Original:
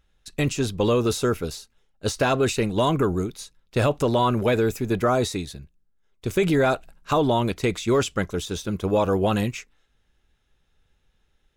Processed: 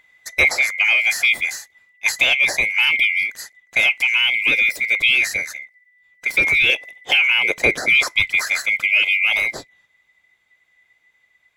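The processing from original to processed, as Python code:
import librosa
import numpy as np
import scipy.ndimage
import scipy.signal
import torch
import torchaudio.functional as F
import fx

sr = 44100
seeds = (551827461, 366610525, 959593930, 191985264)

y = fx.band_swap(x, sr, width_hz=2000)
y = fx.peak_eq(y, sr, hz=450.0, db=10.5, octaves=1.8, at=(6.69, 7.9))
y = fx.rider(y, sr, range_db=4, speed_s=0.5)
y = F.gain(torch.from_numpy(y), 5.0).numpy()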